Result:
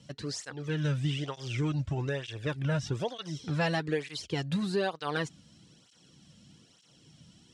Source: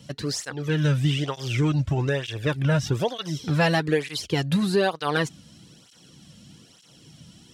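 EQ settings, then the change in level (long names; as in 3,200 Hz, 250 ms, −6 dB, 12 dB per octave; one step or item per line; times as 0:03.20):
low-pass filter 9,300 Hz 24 dB per octave
−8.0 dB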